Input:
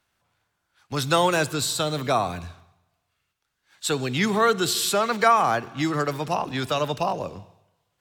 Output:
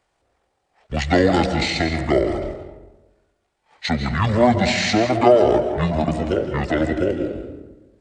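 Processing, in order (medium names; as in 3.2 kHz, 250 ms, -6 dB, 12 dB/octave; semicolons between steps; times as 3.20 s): peaking EQ 1.1 kHz +3 dB 0.58 oct; algorithmic reverb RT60 1.2 s, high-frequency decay 0.6×, pre-delay 115 ms, DRR 6.5 dB; pitch shift -11 st; trim +3.5 dB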